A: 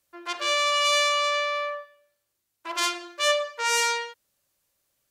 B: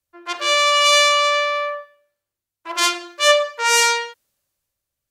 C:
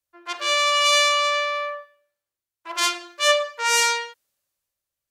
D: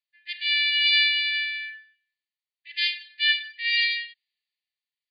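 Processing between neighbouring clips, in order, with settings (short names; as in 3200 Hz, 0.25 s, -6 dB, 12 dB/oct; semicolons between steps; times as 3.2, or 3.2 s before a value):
three-band expander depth 40%; gain +7.5 dB
low shelf 310 Hz -7.5 dB; gain -3.5 dB
brick-wall FIR band-pass 1700–4900 Hz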